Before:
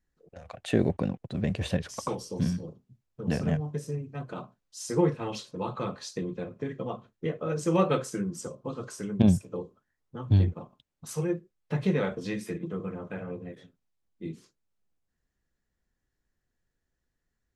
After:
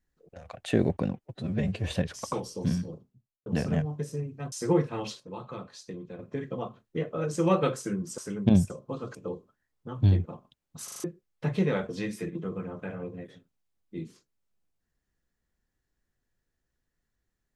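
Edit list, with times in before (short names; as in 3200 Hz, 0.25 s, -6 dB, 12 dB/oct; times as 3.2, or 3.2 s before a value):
1.15–1.65 stretch 1.5×
2.67–3.21 studio fade out
4.27–4.8 cut
5.48–6.47 gain -7 dB
8.46–8.91 move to 9.43
11.12 stutter in place 0.04 s, 5 plays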